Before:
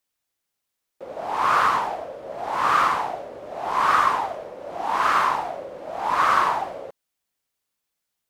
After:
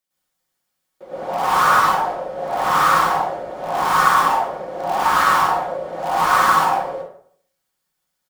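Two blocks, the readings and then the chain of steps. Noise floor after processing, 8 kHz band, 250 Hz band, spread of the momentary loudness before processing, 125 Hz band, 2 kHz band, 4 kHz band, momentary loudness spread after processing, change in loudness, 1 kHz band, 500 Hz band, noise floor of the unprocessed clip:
−76 dBFS, +10.5 dB, +6.5 dB, 16 LU, +9.5 dB, +5.5 dB, +6.5 dB, 13 LU, +4.5 dB, +5.0 dB, +6.0 dB, −81 dBFS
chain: notch filter 2,600 Hz, Q 28
comb filter 5.4 ms, depth 45%
in parallel at −8 dB: wrap-around overflow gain 18 dB
on the sum: dense smooth reverb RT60 0.59 s, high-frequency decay 0.65×, pre-delay 95 ms, DRR −9.5 dB
level −7 dB

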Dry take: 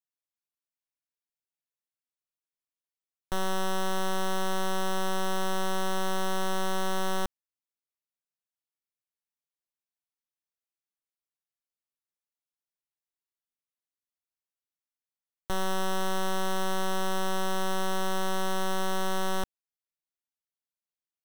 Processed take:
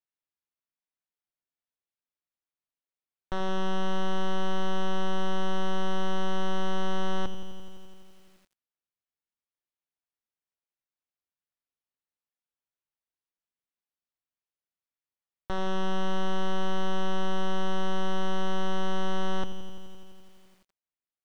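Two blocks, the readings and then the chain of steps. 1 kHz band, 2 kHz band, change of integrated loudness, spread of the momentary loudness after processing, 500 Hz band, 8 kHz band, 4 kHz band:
−2.0 dB, −3.0 dB, −1.0 dB, 8 LU, −0.5 dB, −11.0 dB, −2.0 dB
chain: high-frequency loss of the air 190 metres
hum removal 202.9 Hz, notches 2
feedback echo at a low word length 85 ms, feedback 80%, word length 9 bits, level −11.5 dB

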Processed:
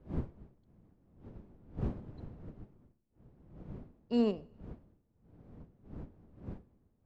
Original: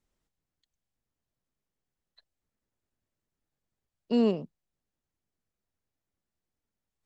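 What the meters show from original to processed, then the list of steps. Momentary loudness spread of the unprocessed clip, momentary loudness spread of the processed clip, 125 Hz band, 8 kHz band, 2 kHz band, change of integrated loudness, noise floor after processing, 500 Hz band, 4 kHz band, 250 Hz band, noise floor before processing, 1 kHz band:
7 LU, 24 LU, +5.0 dB, can't be measured, −4.5 dB, −11.5 dB, −74 dBFS, −5.0 dB, −5.5 dB, −4.0 dB, below −85 dBFS, −4.0 dB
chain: wind on the microphone 210 Hz −37 dBFS
four-comb reverb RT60 0.99 s, combs from 26 ms, DRR 16.5 dB
expander for the loud parts 1.5 to 1, over −43 dBFS
level −4.5 dB

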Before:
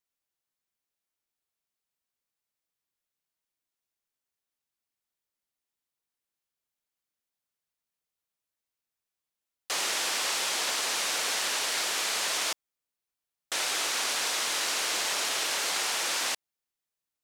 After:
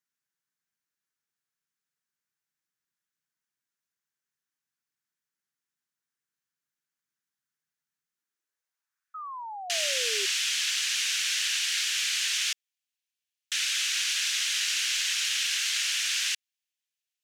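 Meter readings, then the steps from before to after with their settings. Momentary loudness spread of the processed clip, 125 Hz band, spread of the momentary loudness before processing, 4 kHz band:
8 LU, can't be measured, 3 LU, +3.0 dB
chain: high-pass filter sweep 140 Hz → 2,800 Hz, 0:08.02–0:09.38
graphic EQ with 15 bands 630 Hz −9 dB, 1,600 Hz +10 dB, 6,300 Hz +5 dB
sound drawn into the spectrogram fall, 0:09.14–0:10.26, 380–1,300 Hz −34 dBFS
level −4 dB

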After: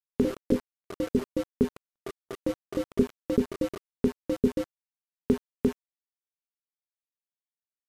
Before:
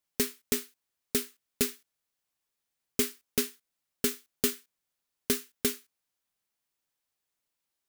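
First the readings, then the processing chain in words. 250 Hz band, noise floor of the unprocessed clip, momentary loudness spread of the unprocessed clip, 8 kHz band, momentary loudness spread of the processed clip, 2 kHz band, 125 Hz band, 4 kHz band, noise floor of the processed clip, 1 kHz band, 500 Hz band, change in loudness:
+10.0 dB, −85 dBFS, 11 LU, −18.0 dB, 15 LU, −6.0 dB, +10.5 dB, −11.5 dB, below −85 dBFS, +5.0 dB, +7.5 dB, +1.0 dB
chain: loose part that buzzes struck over −39 dBFS, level −24 dBFS
low-shelf EQ 290 Hz +8 dB
delay with pitch and tempo change per echo 89 ms, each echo +4 semitones, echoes 3, each echo −6 dB
elliptic low-pass filter 550 Hz, stop band 40 dB
low-shelf EQ 110 Hz −3.5 dB
ambience of single reflections 23 ms −6.5 dB, 33 ms −9 dB
centre clipping without the shift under −38.5 dBFS
noise gate −49 dBFS, range −44 dB
level +4.5 dB
MP3 320 kbit/s 32,000 Hz

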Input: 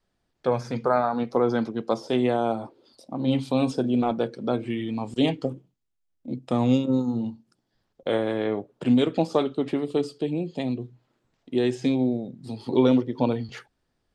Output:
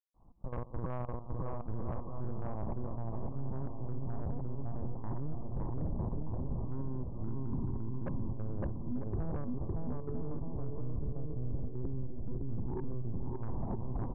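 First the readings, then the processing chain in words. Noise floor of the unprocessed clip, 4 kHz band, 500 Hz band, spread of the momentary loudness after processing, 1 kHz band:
−76 dBFS, below −40 dB, −19.0 dB, 3 LU, −16.5 dB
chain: peak hold with a decay on every bin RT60 2.51 s
camcorder AGC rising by 74 dB per second
noise gate −14 dBFS, range −7 dB
bit reduction 10 bits
linear-prediction vocoder at 8 kHz pitch kept
gate pattern "xxx..x.xxx......" 143 BPM −12 dB
transient designer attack +7 dB, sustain −5 dB
Butterworth low-pass 1,100 Hz 72 dB per octave
bouncing-ball delay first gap 560 ms, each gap 0.7×, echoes 5
soft clipping −13.5 dBFS, distortion −18 dB
parametric band 520 Hz −14.5 dB 1.5 octaves
brickwall limiter −26 dBFS, peak gain reduction 10 dB
level −1 dB

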